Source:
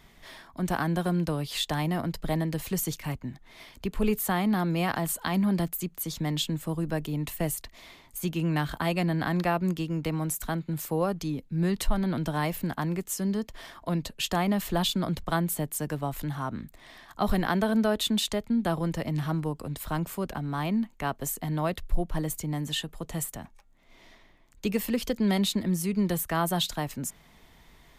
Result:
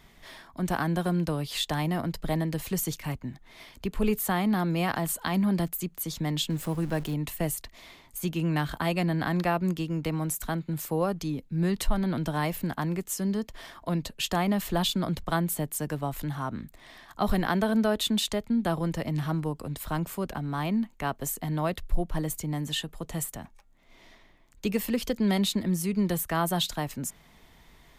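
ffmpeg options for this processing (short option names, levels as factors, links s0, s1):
-filter_complex "[0:a]asettb=1/sr,asplit=3[s0][s1][s2];[s0]atrim=end=6.504[s3];[s1]atrim=start=6.5:end=7.14,asetpts=PTS-STARTPTS,afade=t=in:d=0.004:c=qsin,afade=t=out:st=0.636:d=0.004:c=qsin,aeval=exprs='val(0)+0.5*0.01*sgn(val(0))':c=same[s4];[s2]atrim=start=7.136[s5];[s3][s4]acrossfade=d=0.004:c1=hsin:c2=qsin[s6];[s6][s5]acrossfade=d=0.004:c1=qsin:c2=hsin"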